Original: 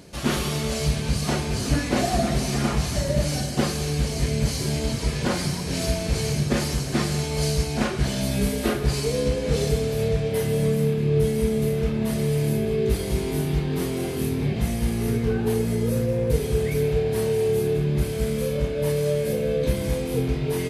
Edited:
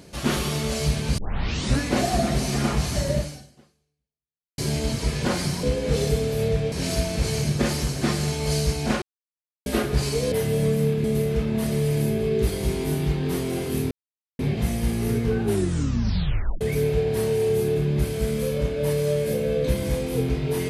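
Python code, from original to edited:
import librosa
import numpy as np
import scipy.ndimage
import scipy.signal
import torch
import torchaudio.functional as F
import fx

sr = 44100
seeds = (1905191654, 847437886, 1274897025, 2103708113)

y = fx.edit(x, sr, fx.tape_start(start_s=1.18, length_s=0.61),
    fx.fade_out_span(start_s=3.15, length_s=1.43, curve='exp'),
    fx.silence(start_s=7.93, length_s=0.64),
    fx.move(start_s=9.23, length_s=1.09, to_s=5.63),
    fx.cut(start_s=11.04, length_s=0.47),
    fx.insert_silence(at_s=14.38, length_s=0.48),
    fx.tape_stop(start_s=15.41, length_s=1.19), tone=tone)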